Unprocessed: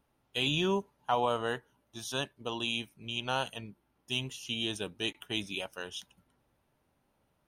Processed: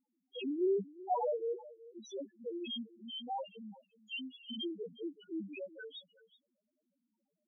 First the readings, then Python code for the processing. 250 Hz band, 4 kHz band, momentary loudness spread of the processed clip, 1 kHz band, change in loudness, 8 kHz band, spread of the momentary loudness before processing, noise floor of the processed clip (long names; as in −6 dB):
−2.5 dB, −11.0 dB, 17 LU, −5.5 dB, −5.5 dB, −19.5 dB, 12 LU, below −85 dBFS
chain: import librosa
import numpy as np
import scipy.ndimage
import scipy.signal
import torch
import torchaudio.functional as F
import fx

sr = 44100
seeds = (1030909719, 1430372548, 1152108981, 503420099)

y = scipy.signal.sosfilt(scipy.signal.butter(16, 180.0, 'highpass', fs=sr, output='sos'), x)
y = y + 10.0 ** (-18.5 / 20.0) * np.pad(y, (int(374 * sr / 1000.0), 0))[:len(y)]
y = fx.spec_topn(y, sr, count=1)
y = y * librosa.db_to_amplitude(5.5)